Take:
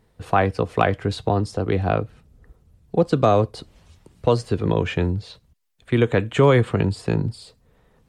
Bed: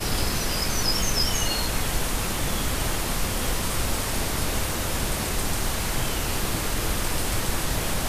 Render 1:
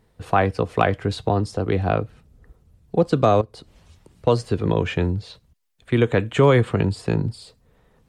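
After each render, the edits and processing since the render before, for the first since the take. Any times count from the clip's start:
0:03.41–0:04.27: downward compressor 2 to 1, threshold −42 dBFS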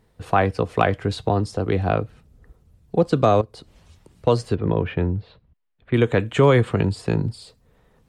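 0:04.55–0:05.94: high-frequency loss of the air 410 metres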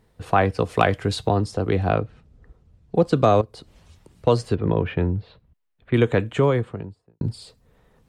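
0:00.59–0:01.31: high-shelf EQ 4,100 Hz +7.5 dB
0:02.00–0:02.95: high-frequency loss of the air 73 metres
0:05.97–0:07.21: fade out and dull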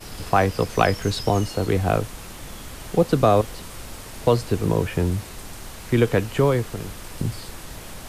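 mix in bed −11.5 dB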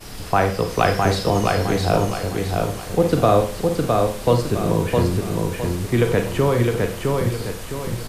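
repeating echo 661 ms, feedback 38%, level −3 dB
four-comb reverb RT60 0.42 s, combs from 33 ms, DRR 5.5 dB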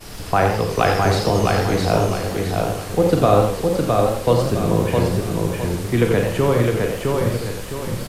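double-tracking delay 39 ms −11 dB
feedback echo with a swinging delay time 88 ms, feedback 35%, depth 152 cents, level −7 dB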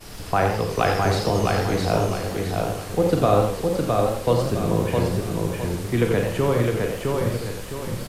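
level −3.5 dB

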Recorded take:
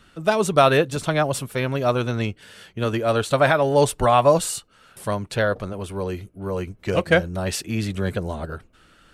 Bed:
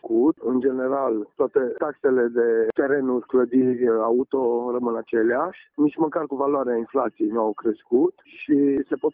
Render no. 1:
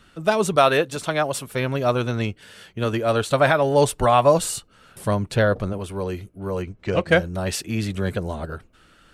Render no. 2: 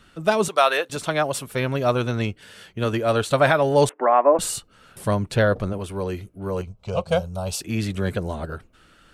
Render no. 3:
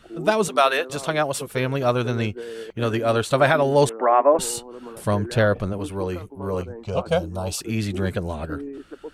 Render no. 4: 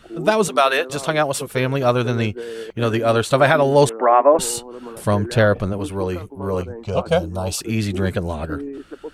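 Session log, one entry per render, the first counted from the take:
0:00.56–0:01.47: low-shelf EQ 190 Hz −10.5 dB; 0:04.41–0:05.78: low-shelf EQ 410 Hz +6 dB; 0:06.62–0:07.09: high-frequency loss of the air 74 metres
0:00.48–0:00.90: high-pass filter 590 Hz; 0:03.89–0:04.39: elliptic band-pass filter 280–2,000 Hz; 0:06.61–0:07.61: phaser with its sweep stopped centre 760 Hz, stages 4
mix in bed −14.5 dB
level +3.5 dB; brickwall limiter −3 dBFS, peak gain reduction 2.5 dB

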